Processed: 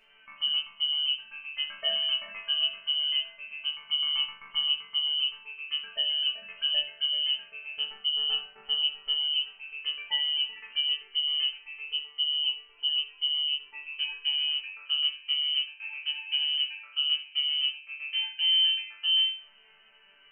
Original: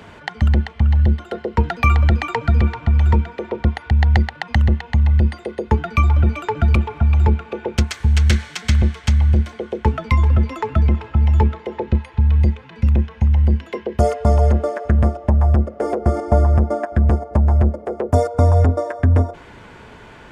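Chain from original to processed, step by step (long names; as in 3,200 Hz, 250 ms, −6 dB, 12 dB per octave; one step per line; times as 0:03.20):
voice inversion scrambler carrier 3,000 Hz
resonators tuned to a chord D3 sus4, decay 0.38 s
harmonic and percussive parts rebalanced percussive −17 dB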